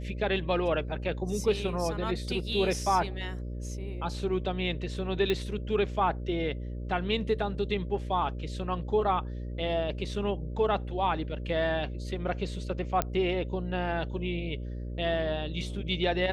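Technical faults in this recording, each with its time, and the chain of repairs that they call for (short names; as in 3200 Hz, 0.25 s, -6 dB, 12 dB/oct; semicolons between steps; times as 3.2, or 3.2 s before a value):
buzz 60 Hz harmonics 10 -36 dBFS
5.3 pop -16 dBFS
13.02 pop -11 dBFS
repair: de-click; de-hum 60 Hz, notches 10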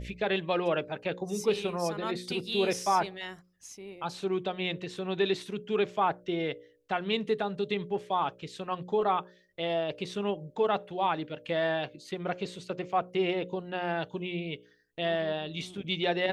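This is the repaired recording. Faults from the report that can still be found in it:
none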